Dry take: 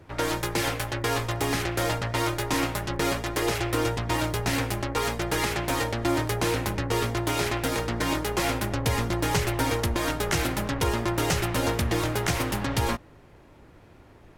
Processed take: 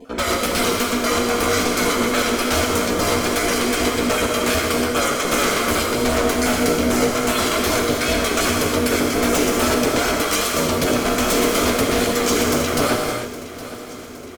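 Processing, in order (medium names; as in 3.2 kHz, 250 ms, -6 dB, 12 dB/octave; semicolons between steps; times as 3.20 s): random holes in the spectrogram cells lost 26%; peaking EQ 6.8 kHz +4 dB 0.74 oct; comb 1.1 ms, depth 78%; vibrato 2.5 Hz 86 cents; wavefolder -20.5 dBFS; ring modulator 360 Hz; on a send: feedback delay 815 ms, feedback 58%, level -16 dB; on the sum: gated-style reverb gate 340 ms flat, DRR 0.5 dB; trim +8.5 dB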